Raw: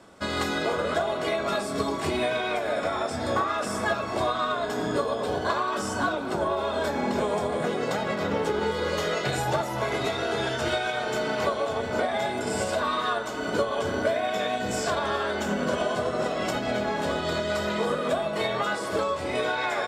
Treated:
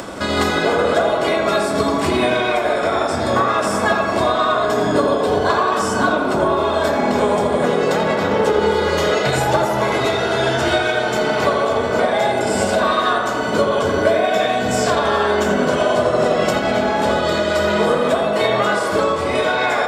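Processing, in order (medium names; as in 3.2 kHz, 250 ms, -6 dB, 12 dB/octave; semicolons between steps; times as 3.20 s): upward compressor, threshold -28 dBFS; tape echo 84 ms, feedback 81%, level -4 dB, low-pass 2 kHz; trim +8 dB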